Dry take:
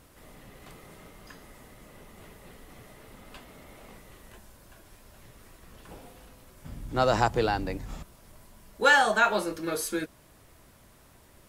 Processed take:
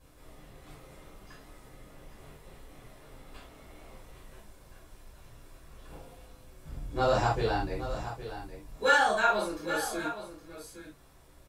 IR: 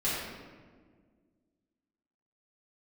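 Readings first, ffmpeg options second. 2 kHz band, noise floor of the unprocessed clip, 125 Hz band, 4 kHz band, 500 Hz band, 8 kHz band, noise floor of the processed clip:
−3.5 dB, −57 dBFS, −0.5 dB, −3.5 dB, −1.5 dB, −4.0 dB, −56 dBFS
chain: -filter_complex "[0:a]aecho=1:1:814:0.266[link_01];[1:a]atrim=start_sample=2205,afade=type=out:start_time=0.22:duration=0.01,atrim=end_sample=10143,asetrate=88200,aresample=44100[link_02];[link_01][link_02]afir=irnorm=-1:irlink=0,volume=-5.5dB"

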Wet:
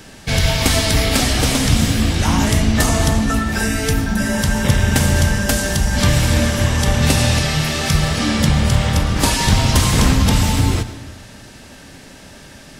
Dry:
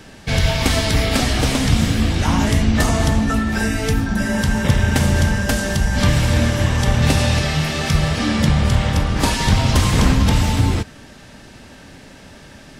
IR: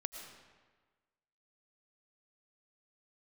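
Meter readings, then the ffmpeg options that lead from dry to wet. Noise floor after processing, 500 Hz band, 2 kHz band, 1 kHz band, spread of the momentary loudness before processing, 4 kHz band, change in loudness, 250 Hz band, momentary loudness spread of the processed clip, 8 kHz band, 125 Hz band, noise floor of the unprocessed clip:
−40 dBFS, +1.0 dB, +1.5 dB, +1.0 dB, 4 LU, +3.0 dB, +1.5 dB, +0.5 dB, 4 LU, +5.5 dB, +0.5 dB, −42 dBFS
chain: -filter_complex "[0:a]highshelf=frequency=5700:gain=8,asplit=2[link_01][link_02];[1:a]atrim=start_sample=2205[link_03];[link_02][link_03]afir=irnorm=-1:irlink=0,volume=-1dB[link_04];[link_01][link_04]amix=inputs=2:normalize=0,volume=-4dB"

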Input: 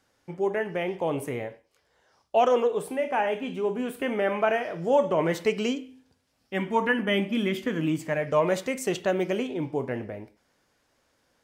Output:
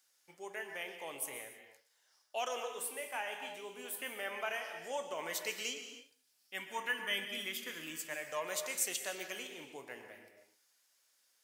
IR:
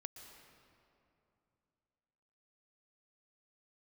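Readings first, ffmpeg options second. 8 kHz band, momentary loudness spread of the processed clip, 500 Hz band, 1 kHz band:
+3.5 dB, 14 LU, −18.5 dB, −14.5 dB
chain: -filter_complex "[0:a]aderivative[link_01];[1:a]atrim=start_sample=2205,afade=type=out:start_time=0.37:duration=0.01,atrim=end_sample=16758[link_02];[link_01][link_02]afir=irnorm=-1:irlink=0,volume=8.5dB"

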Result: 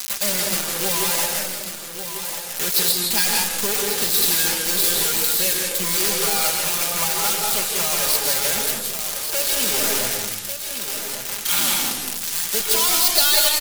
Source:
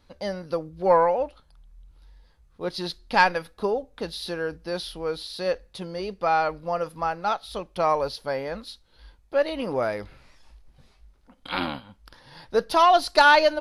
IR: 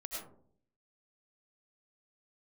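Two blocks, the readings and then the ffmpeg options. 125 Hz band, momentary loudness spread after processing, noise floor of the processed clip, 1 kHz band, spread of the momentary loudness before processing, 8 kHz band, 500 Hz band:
+3.0 dB, 10 LU, −31 dBFS, −6.0 dB, 15 LU, +29.0 dB, −5.0 dB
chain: -filter_complex "[0:a]aeval=exprs='val(0)+0.5*0.0316*sgn(val(0))':channel_layout=same,highshelf=frequency=7000:gain=-11.5,bandreject=frequency=136.2:width_type=h:width=4,bandreject=frequency=272.4:width_type=h:width=4,bandreject=frequency=408.6:width_type=h:width=4,bandreject=frequency=544.8:width_type=h:width=4,bandreject=frequency=681:width_type=h:width=4,bandreject=frequency=817.2:width_type=h:width=4,bandreject=frequency=953.4:width_type=h:width=4,bandreject=frequency=1089.6:width_type=h:width=4,bandreject=frequency=1225.8:width_type=h:width=4,bandreject=frequency=1362:width_type=h:width=4,bandreject=frequency=1498.2:width_type=h:width=4,bandreject=frequency=1634.4:width_type=h:width=4,bandreject=frequency=1770.6:width_type=h:width=4,bandreject=frequency=1906.8:width_type=h:width=4,bandreject=frequency=2043:width_type=h:width=4,bandreject=frequency=2179.2:width_type=h:width=4,bandreject=frequency=2315.4:width_type=h:width=4,bandreject=frequency=2451.6:width_type=h:width=4,acrossover=split=240|2900[link_01][link_02][link_03];[link_02]acompressor=threshold=-28dB:ratio=8[link_04];[link_01][link_04][link_03]amix=inputs=3:normalize=0,acrusher=bits=4:mix=0:aa=0.000001,aecho=1:1:1143:0.355,asplit=2[link_05][link_06];[1:a]atrim=start_sample=2205,asetrate=28224,aresample=44100,adelay=5[link_07];[link_06][link_07]afir=irnorm=-1:irlink=0,volume=0dB[link_08];[link_05][link_08]amix=inputs=2:normalize=0,crystalizer=i=7.5:c=0,volume=-5.5dB"

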